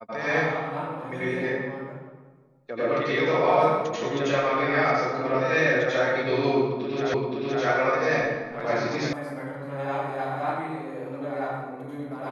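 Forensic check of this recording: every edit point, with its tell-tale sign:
0:07.14: the same again, the last 0.52 s
0:09.13: cut off before it has died away

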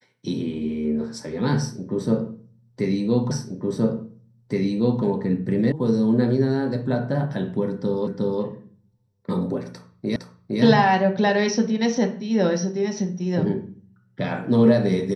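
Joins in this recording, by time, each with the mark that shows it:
0:03.31: the same again, the last 1.72 s
0:05.72: cut off before it has died away
0:08.07: the same again, the last 0.36 s
0:10.16: the same again, the last 0.46 s

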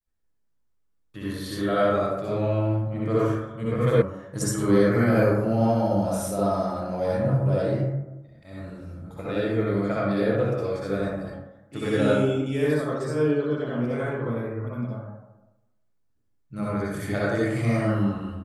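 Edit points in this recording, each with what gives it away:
0:04.02: cut off before it has died away

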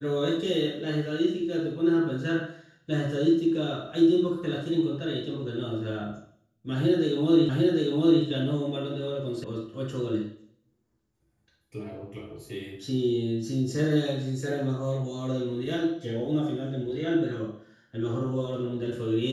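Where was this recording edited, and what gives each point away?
0:07.49: the same again, the last 0.75 s
0:09.44: cut off before it has died away

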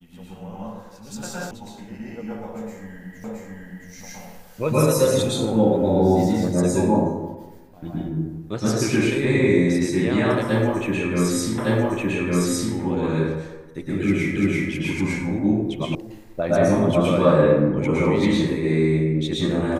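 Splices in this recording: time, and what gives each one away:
0:01.51: cut off before it has died away
0:03.24: the same again, the last 0.67 s
0:11.58: the same again, the last 1.16 s
0:14.36: the same again, the last 0.34 s
0:15.95: cut off before it has died away

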